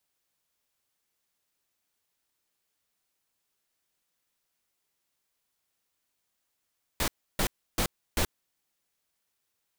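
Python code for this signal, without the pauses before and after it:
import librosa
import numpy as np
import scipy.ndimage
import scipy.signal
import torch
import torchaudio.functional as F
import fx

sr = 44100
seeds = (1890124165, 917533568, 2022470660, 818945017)

y = fx.noise_burst(sr, seeds[0], colour='pink', on_s=0.08, off_s=0.31, bursts=4, level_db=-26.5)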